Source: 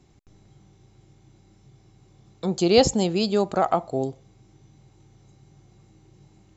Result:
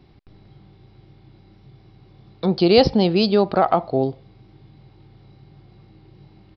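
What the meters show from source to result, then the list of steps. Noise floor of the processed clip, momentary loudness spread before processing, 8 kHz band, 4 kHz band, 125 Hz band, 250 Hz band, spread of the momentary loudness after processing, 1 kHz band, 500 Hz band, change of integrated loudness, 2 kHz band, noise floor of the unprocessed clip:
−52 dBFS, 12 LU, can't be measured, +3.5 dB, +5.0 dB, +5.0 dB, 9 LU, +4.0 dB, +4.0 dB, +4.0 dB, +4.0 dB, −58 dBFS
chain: in parallel at −0.5 dB: brickwall limiter −13.5 dBFS, peak gain reduction 10 dB
on the sum: downsampling to 11,025 Hz

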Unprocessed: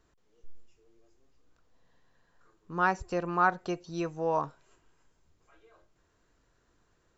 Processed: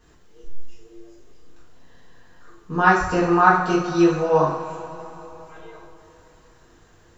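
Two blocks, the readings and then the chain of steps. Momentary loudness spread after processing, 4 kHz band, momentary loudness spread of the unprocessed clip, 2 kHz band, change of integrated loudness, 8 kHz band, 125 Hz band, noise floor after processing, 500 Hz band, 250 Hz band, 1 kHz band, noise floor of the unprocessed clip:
18 LU, +13.0 dB, 10 LU, +11.0 dB, +11.5 dB, can't be measured, +13.0 dB, −54 dBFS, +12.5 dB, +15.5 dB, +11.0 dB, −71 dBFS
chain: in parallel at −2 dB: downward compressor, threshold −41 dBFS, peak gain reduction 20 dB
on the sum: coupled-rooms reverb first 0.59 s, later 3.9 s, from −18 dB, DRR −8.5 dB
level +1.5 dB

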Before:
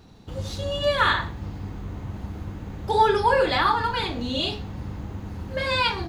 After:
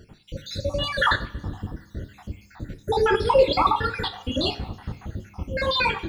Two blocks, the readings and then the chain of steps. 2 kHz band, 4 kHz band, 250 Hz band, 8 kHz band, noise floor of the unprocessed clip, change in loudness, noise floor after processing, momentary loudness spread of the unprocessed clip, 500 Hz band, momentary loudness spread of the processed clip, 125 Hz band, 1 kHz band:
0.0 dB, −0.5 dB, 0.0 dB, can't be measured, −40 dBFS, +0.5 dB, −53 dBFS, 15 LU, +2.0 dB, 20 LU, −1.0 dB, −2.0 dB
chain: time-frequency cells dropped at random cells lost 66%
coupled-rooms reverb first 0.41 s, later 1.9 s, from −18 dB, DRR 8.5 dB
level +4 dB

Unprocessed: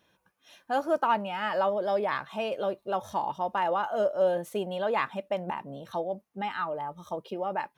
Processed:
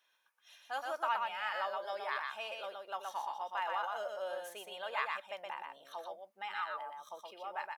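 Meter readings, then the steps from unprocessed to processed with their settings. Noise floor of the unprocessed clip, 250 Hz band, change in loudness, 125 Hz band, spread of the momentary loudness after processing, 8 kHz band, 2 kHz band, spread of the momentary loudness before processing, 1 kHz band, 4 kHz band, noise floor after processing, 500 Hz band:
−74 dBFS, below −25 dB, −9.5 dB, below −30 dB, 11 LU, can't be measured, −3.5 dB, 9 LU, −8.0 dB, −3.0 dB, −75 dBFS, −14.5 dB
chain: high-pass filter 1,100 Hz 12 dB per octave
on a send: single-tap delay 121 ms −3.5 dB
on the sum: level −4.5 dB

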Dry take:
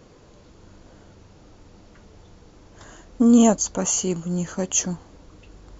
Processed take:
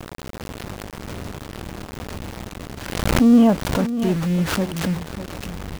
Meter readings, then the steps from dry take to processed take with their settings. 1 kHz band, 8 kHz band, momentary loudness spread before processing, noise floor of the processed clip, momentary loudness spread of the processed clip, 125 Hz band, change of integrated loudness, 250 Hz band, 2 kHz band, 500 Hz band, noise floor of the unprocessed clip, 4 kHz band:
+4.0 dB, can't be measured, 12 LU, −37 dBFS, 20 LU, +7.5 dB, +0.5 dB, +3.0 dB, +11.0 dB, +1.5 dB, −51 dBFS, +4.5 dB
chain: converter with a step at zero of −23 dBFS
low-pass filter 3,200 Hz 24 dB per octave
parametric band 120 Hz +4 dB 2.6 octaves
centre clipping without the shift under −24.5 dBFS
on a send: single-tap delay 595 ms −13 dB
on the sum: background raised ahead of every attack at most 52 dB per second
level −2 dB

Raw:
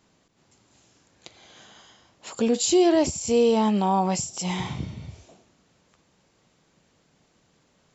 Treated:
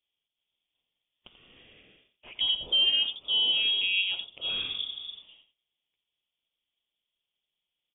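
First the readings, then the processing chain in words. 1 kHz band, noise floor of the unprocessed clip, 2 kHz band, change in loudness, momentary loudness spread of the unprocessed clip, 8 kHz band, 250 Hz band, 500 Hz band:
−26.0 dB, −65 dBFS, +6.0 dB, −2.5 dB, 16 LU, can't be measured, below −30 dB, −28.5 dB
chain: noise gate −56 dBFS, range −19 dB
parametric band 2,000 Hz −11 dB 0.73 octaves
in parallel at −2 dB: downward compressor, threshold −29 dBFS, peak gain reduction 13 dB
on the sum: single-tap delay 88 ms −10.5 dB
voice inversion scrambler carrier 3,500 Hz
level −7.5 dB

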